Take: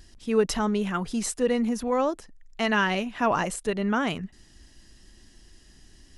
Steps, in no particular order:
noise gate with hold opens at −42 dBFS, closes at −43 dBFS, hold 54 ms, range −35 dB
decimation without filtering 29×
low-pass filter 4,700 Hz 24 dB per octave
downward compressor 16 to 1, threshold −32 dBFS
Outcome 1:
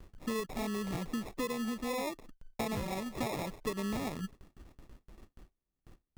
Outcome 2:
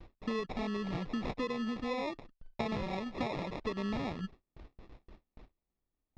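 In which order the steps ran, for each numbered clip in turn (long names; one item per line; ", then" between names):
low-pass filter, then noise gate with hold, then decimation without filtering, then downward compressor
downward compressor, then decimation without filtering, then low-pass filter, then noise gate with hold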